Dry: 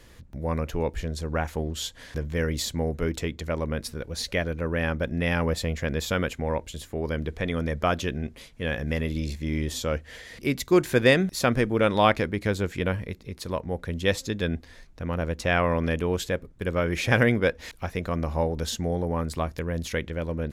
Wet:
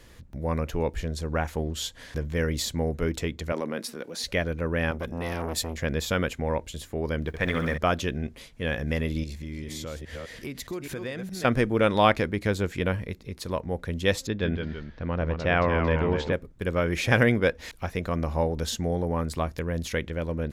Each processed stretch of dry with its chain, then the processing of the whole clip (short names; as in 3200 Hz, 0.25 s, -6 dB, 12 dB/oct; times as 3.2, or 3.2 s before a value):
3.52–4.24 HPF 200 Hz 24 dB/oct + transient shaper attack -3 dB, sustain +4 dB
4.91–5.77 high shelf 5200 Hz +10.5 dB + transient shaper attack -3 dB, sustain +1 dB + core saturation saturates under 950 Hz
7.27–7.78 G.711 law mismatch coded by A + dynamic EQ 1600 Hz, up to +7 dB, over -48 dBFS, Q 0.86 + flutter echo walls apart 11.4 m, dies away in 0.57 s
9.23–11.45 reverse delay 0.206 s, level -7 dB + compressor 4:1, threshold -33 dBFS
14.27–16.33 Bessel low-pass 3500 Hz, order 4 + echoes that change speed 0.155 s, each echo -1 st, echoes 2, each echo -6 dB
whole clip: dry